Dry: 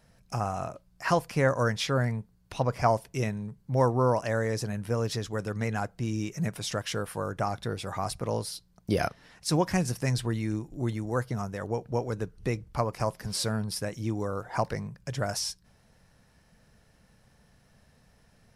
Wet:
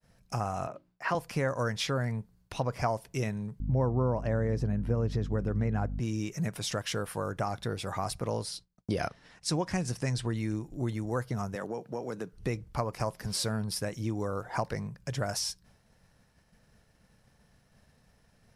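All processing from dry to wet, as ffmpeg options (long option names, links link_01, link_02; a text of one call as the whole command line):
ffmpeg -i in.wav -filter_complex "[0:a]asettb=1/sr,asplit=3[link_01][link_02][link_03];[link_01]atrim=end=0.674[link_04];[link_02]atrim=start=0.67:end=1.15,asetpts=PTS-STARTPTS,afade=type=in:duration=0.004:curve=qsin,afade=type=out:start_time=0.476:duration=0.004:curve=qsin,acrossover=split=150 3700:gain=0.158 1 0.224[link_05][link_06][link_07];[link_05][link_06][link_07]amix=inputs=3:normalize=0,bandreject=frequency=50:width_type=h:width=6,bandreject=frequency=100:width_type=h:width=6,bandreject=frequency=150:width_type=h:width=6,bandreject=frequency=200:width_type=h:width=6,bandreject=frequency=250:width_type=h:width=6,bandreject=frequency=300:width_type=h:width=6,bandreject=frequency=350:width_type=h:width=6[link_08];[link_03]atrim=start=1.146[link_09];[link_04][link_08]acrossfade=duration=0.004:curve1=hsin:curve2=qsin[link_10];[link_10][link_09]acrossfade=duration=0.004:curve1=qsin:curve2=hsin,asettb=1/sr,asplit=3[link_11][link_12][link_13];[link_11]atrim=end=3.604[link_14];[link_12]atrim=start=3.6:end=6,asetpts=PTS-STARTPTS,afade=type=in:duration=0.004:curve=qsin,afade=type=out:start_time=2.396:duration=0.004:curve=qsin,lowpass=frequency=1700:poles=1,lowshelf=frequency=440:gain=8.5,aeval=exprs='val(0)+0.0282*(sin(2*PI*50*n/s)+sin(2*PI*2*50*n/s)/2+sin(2*PI*3*50*n/s)/3+sin(2*PI*4*50*n/s)/4+sin(2*PI*5*50*n/s)/5)':channel_layout=same[link_15];[link_13]atrim=start=5.996[link_16];[link_14][link_15]acrossfade=duration=0.004:curve1=hsin:curve2=qsin[link_17];[link_17][link_16]acrossfade=duration=0.004:curve1=qsin:curve2=hsin,asettb=1/sr,asplit=3[link_18][link_19][link_20];[link_18]atrim=end=8.434[link_21];[link_19]atrim=start=8.43:end=10.37,asetpts=PTS-STARTPTS,afade=type=in:duration=0.004:curve=qsin,afade=type=out:start_time=1.936:duration=0.004:curve=qsin,agate=range=-33dB:threshold=-54dB:ratio=3:release=100:detection=peak,lowpass=frequency=10000:width=0.5412,lowpass=frequency=10000:width=1.3066[link_22];[link_20]atrim=start=10.366[link_23];[link_21][link_22]acrossfade=duration=0.004:curve1=hsin:curve2=qsin[link_24];[link_24][link_23]acrossfade=duration=0.004:curve1=qsin:curve2=hsin,asettb=1/sr,asplit=3[link_25][link_26][link_27];[link_25]atrim=end=11.554[link_28];[link_26]atrim=start=11.55:end=12.33,asetpts=PTS-STARTPTS,afade=type=in:duration=0.004:curve=qsin,afade=type=out:start_time=0.776:duration=0.004:curve=qsin,highpass=frequency=150:width=0.5412,highpass=frequency=150:width=1.3066,acompressor=threshold=-30dB:ratio=5:attack=3.2:release=140:knee=1:detection=peak[link_29];[link_27]atrim=start=12.326[link_30];[link_28][link_29]acrossfade=duration=0.004:curve1=hsin:curve2=qsin[link_31];[link_31][link_30]acrossfade=duration=0.004:curve1=qsin:curve2=hsin,agate=range=-33dB:threshold=-57dB:ratio=3:detection=peak,acompressor=threshold=-28dB:ratio=2.5" out.wav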